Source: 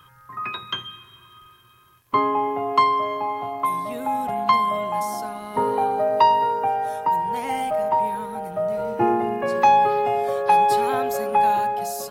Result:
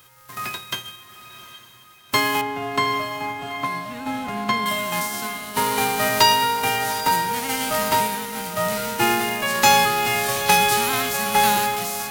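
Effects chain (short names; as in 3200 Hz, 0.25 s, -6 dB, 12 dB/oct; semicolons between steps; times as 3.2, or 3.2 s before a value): spectral whitening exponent 0.3; 2.41–4.66 LPF 1200 Hz 6 dB/oct; diffused feedback echo 0.787 s, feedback 45%, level -13 dB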